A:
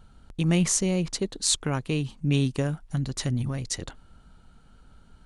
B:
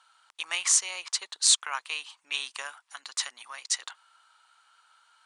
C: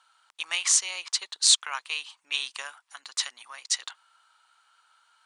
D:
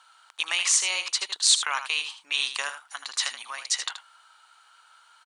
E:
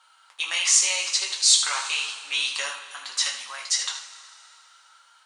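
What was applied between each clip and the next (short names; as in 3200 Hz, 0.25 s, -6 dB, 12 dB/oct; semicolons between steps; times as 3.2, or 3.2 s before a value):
elliptic band-pass 1000–9400 Hz, stop band 70 dB; gain +4 dB
dynamic EQ 3800 Hz, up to +5 dB, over -40 dBFS, Q 0.81; gain -1.5 dB
in parallel at -2 dB: negative-ratio compressor -33 dBFS, ratio -1; on the sum: echo 78 ms -10 dB; gain -1 dB
two-slope reverb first 0.26 s, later 2.8 s, from -18 dB, DRR -2 dB; dynamic EQ 6000 Hz, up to +5 dB, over -36 dBFS, Q 1.2; gain -4 dB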